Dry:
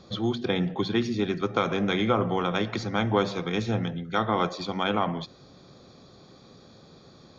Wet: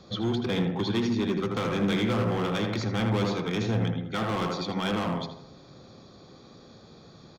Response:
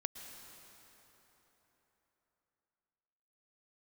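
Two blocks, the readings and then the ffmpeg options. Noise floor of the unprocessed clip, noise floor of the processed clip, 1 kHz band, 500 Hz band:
-53 dBFS, -52 dBFS, -4.5 dB, -2.0 dB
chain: -filter_complex "[0:a]asplit=2[a][b];[b]adelay=80,lowpass=f=1.8k:p=1,volume=-5dB,asplit=2[c][d];[d]adelay=80,lowpass=f=1.8k:p=1,volume=0.45,asplit=2[e][f];[f]adelay=80,lowpass=f=1.8k:p=1,volume=0.45,asplit=2[g][h];[h]adelay=80,lowpass=f=1.8k:p=1,volume=0.45,asplit=2[i][j];[j]adelay=80,lowpass=f=1.8k:p=1,volume=0.45,asplit=2[k][l];[l]adelay=80,lowpass=f=1.8k:p=1,volume=0.45[m];[a][c][e][g][i][k][m]amix=inputs=7:normalize=0,acrossover=split=240|3400[n][o][p];[o]volume=28dB,asoftclip=hard,volume=-28dB[q];[n][q][p]amix=inputs=3:normalize=0"

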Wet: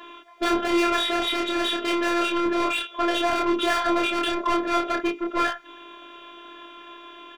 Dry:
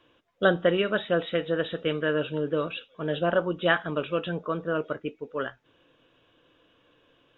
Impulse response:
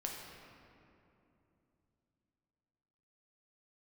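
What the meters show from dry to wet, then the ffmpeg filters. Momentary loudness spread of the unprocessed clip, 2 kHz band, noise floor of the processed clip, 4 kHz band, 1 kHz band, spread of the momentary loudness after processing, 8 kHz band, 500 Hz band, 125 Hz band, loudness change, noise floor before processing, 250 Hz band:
10 LU, +3.0 dB, -46 dBFS, +9.0 dB, +9.5 dB, 21 LU, n/a, -1.0 dB, under -15 dB, +4.0 dB, -65 dBFS, +6.0 dB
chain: -filter_complex "[0:a]asplit=2[a][b];[b]highpass=f=720:p=1,volume=38dB,asoftclip=type=tanh:threshold=-6dB[c];[a][c]amix=inputs=2:normalize=0,lowpass=f=2.4k:p=1,volume=-6dB,afftfilt=real='hypot(re,im)*cos(PI*b)':imag='0':win_size=512:overlap=0.75,asplit=2[d][e];[e]adelay=27,volume=-2.5dB[f];[d][f]amix=inputs=2:normalize=0,volume=-5dB"

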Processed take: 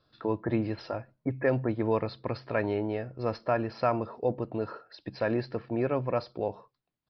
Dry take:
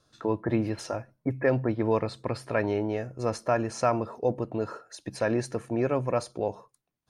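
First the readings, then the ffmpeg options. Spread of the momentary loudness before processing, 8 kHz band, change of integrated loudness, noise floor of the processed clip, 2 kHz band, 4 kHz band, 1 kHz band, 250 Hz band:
8 LU, under -25 dB, -2.0 dB, -82 dBFS, -2.0 dB, -3.0 dB, -2.0 dB, -2.0 dB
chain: -af "aresample=11025,aresample=44100,volume=-2dB"

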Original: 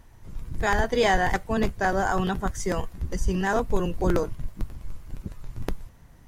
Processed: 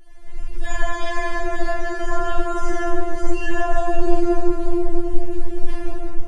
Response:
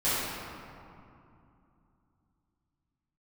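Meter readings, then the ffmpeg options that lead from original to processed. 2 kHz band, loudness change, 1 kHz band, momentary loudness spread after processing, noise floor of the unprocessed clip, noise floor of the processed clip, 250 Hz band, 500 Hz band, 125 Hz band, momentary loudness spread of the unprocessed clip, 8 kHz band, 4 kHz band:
+0.5 dB, +1.0 dB, +0.5 dB, 10 LU, -51 dBFS, -29 dBFS, +4.5 dB, +2.5 dB, -1.5 dB, 18 LU, -1.5 dB, -2.0 dB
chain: -filter_complex "[0:a]acrossover=split=2500|5700[a][b][c];[a]acompressor=threshold=-27dB:ratio=4[d];[b]acompressor=threshold=-53dB:ratio=4[e];[c]acompressor=threshold=-54dB:ratio=4[f];[d][e][f]amix=inputs=3:normalize=0[g];[1:a]atrim=start_sample=2205,asetrate=22050,aresample=44100[h];[g][h]afir=irnorm=-1:irlink=0,afftfilt=real='re*4*eq(mod(b,16),0)':imag='im*4*eq(mod(b,16),0)':win_size=2048:overlap=0.75,volume=-5.5dB"

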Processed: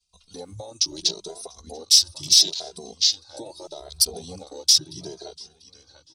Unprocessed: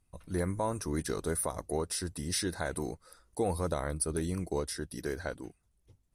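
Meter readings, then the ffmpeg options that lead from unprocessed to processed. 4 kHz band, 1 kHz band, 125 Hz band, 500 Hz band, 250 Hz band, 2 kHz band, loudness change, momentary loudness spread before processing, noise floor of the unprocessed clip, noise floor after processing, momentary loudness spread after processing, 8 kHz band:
+24.0 dB, -6.0 dB, -8.5 dB, -4.0 dB, -7.0 dB, -5.0 dB, +15.5 dB, 8 LU, -73 dBFS, -61 dBFS, 23 LU, +15.0 dB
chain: -filter_complex "[0:a]asplit=2[a][b];[b]adelay=691,lowpass=f=3.5k:p=1,volume=-8dB,asplit=2[c][d];[d]adelay=691,lowpass=f=3.5k:p=1,volume=0.35,asplit=2[e][f];[f]adelay=691,lowpass=f=3.5k:p=1,volume=0.35,asplit=2[g][h];[h]adelay=691,lowpass=f=3.5k:p=1,volume=0.35[i];[a][c][e][g][i]amix=inputs=5:normalize=0,acrossover=split=170|1700[j][k][l];[j]aeval=exprs='0.0126*(abs(mod(val(0)/0.0126+3,4)-2)-1)':c=same[m];[l]lowpass=f=5.6k:w=0.5412,lowpass=f=5.6k:w=1.3066[n];[m][k][n]amix=inputs=3:normalize=0,acompressor=mode=upward:threshold=-55dB:ratio=2.5,agate=range=-33dB:threshold=-57dB:ratio=3:detection=peak,acompressor=threshold=-35dB:ratio=6,aexciter=amount=12.3:drive=3.5:freq=2.7k,lowshelf=f=290:g=-9.5,afwtdn=0.02,equalizer=f=250:t=o:w=1:g=-8,equalizer=f=500:t=o:w=1:g=-6,equalizer=f=2k:t=o:w=1:g=-10,alimiter=level_in=16dB:limit=-1dB:release=50:level=0:latency=1,asplit=2[o][p];[p]adelay=2.5,afreqshift=0.76[q];[o][q]amix=inputs=2:normalize=1"

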